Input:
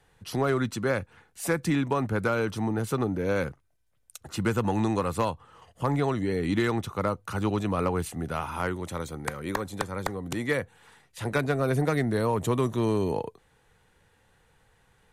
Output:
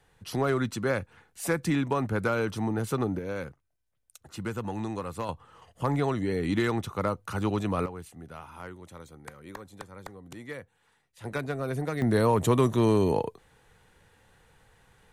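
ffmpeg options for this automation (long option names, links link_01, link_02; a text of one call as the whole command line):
ffmpeg -i in.wav -af "asetnsamples=nb_out_samples=441:pad=0,asendcmd='3.19 volume volume -7.5dB;5.29 volume volume -1dB;7.86 volume volume -12.5dB;11.24 volume volume -6dB;12.02 volume volume 3dB',volume=-1dB" out.wav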